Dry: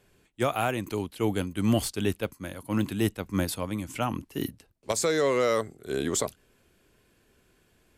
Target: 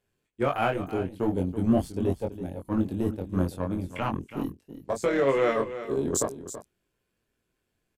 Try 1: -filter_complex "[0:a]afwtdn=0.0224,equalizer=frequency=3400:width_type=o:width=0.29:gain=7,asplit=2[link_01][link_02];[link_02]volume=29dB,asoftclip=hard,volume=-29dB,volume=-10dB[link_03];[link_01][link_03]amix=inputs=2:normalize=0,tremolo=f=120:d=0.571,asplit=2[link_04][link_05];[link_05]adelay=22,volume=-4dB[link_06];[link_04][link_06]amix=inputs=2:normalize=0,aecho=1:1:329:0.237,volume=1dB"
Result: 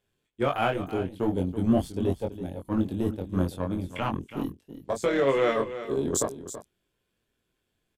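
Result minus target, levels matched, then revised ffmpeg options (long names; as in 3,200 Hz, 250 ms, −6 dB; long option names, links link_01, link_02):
4,000 Hz band +3.5 dB
-filter_complex "[0:a]afwtdn=0.0224,asplit=2[link_01][link_02];[link_02]volume=29dB,asoftclip=hard,volume=-29dB,volume=-10dB[link_03];[link_01][link_03]amix=inputs=2:normalize=0,tremolo=f=120:d=0.571,asplit=2[link_04][link_05];[link_05]adelay=22,volume=-4dB[link_06];[link_04][link_06]amix=inputs=2:normalize=0,aecho=1:1:329:0.237,volume=1dB"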